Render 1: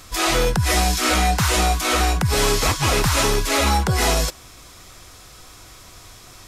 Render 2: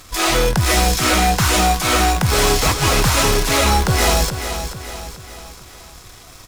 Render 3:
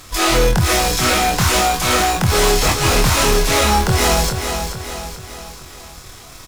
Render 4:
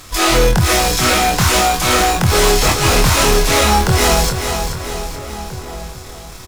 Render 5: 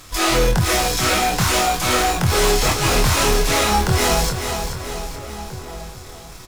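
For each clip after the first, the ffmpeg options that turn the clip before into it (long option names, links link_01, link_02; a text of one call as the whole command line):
ffmpeg -i in.wav -filter_complex "[0:a]asplit=2[link_01][link_02];[link_02]acrusher=bits=4:dc=4:mix=0:aa=0.000001,volume=-6dB[link_03];[link_01][link_03]amix=inputs=2:normalize=0,aecho=1:1:431|862|1293|1724|2155:0.335|0.161|0.0772|0.037|0.0178,volume=-1dB" out.wav
ffmpeg -i in.wav -filter_complex "[0:a]asoftclip=type=tanh:threshold=-11dB,asplit=2[link_01][link_02];[link_02]adelay=24,volume=-4dB[link_03];[link_01][link_03]amix=inputs=2:normalize=0,volume=1.5dB" out.wav
ffmpeg -i in.wav -filter_complex "[0:a]asplit=2[link_01][link_02];[link_02]adelay=1633,volume=-14dB,highshelf=frequency=4000:gain=-36.7[link_03];[link_01][link_03]amix=inputs=2:normalize=0,volume=2dB" out.wav
ffmpeg -i in.wav -af "flanger=delay=5.9:depth=4.5:regen=-69:speed=1.4:shape=triangular" out.wav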